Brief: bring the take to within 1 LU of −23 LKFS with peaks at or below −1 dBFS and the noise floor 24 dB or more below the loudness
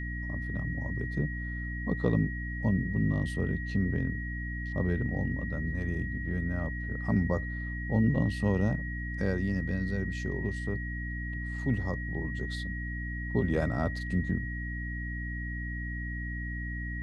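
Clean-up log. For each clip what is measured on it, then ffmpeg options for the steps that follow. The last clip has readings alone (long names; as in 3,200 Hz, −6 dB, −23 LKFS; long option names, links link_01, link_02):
mains hum 60 Hz; hum harmonics up to 300 Hz; level of the hum −34 dBFS; interfering tone 1,900 Hz; level of the tone −39 dBFS; integrated loudness −32.0 LKFS; sample peak −14.0 dBFS; target loudness −23.0 LKFS
→ -af "bandreject=frequency=60:width_type=h:width=6,bandreject=frequency=120:width_type=h:width=6,bandreject=frequency=180:width_type=h:width=6,bandreject=frequency=240:width_type=h:width=6,bandreject=frequency=300:width_type=h:width=6"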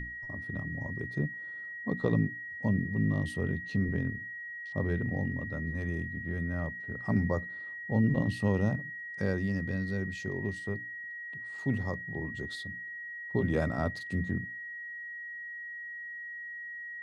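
mains hum none found; interfering tone 1,900 Hz; level of the tone −39 dBFS
→ -af "bandreject=frequency=1900:width=30"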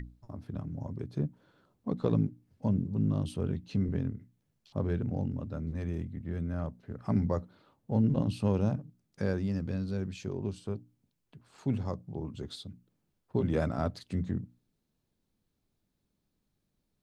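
interfering tone none found; integrated loudness −33.5 LKFS; sample peak −15.0 dBFS; target loudness −23.0 LKFS
→ -af "volume=10.5dB"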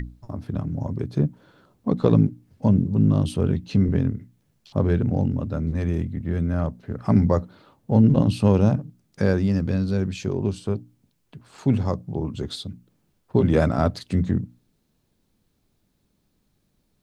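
integrated loudness −23.0 LKFS; sample peak −4.5 dBFS; background noise floor −70 dBFS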